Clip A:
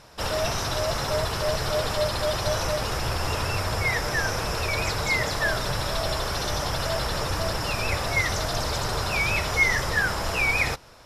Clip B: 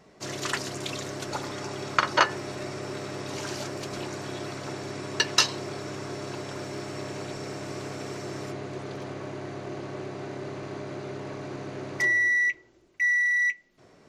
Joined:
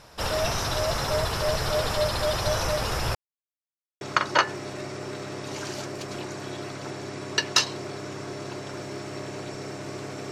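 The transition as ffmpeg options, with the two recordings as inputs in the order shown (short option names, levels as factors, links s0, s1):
-filter_complex "[0:a]apad=whole_dur=10.31,atrim=end=10.31,asplit=2[s0][s1];[s0]atrim=end=3.15,asetpts=PTS-STARTPTS,afade=t=out:st=3.146:d=0.004:c=hsin[s2];[s1]atrim=start=3.15:end=4.01,asetpts=PTS-STARTPTS,volume=0[s3];[1:a]atrim=start=1.83:end=8.13,asetpts=PTS-STARTPTS,afade=t=in:d=0.004:c=hsin[s4];[s2][s3][s4]concat=n=3:v=0:a=1"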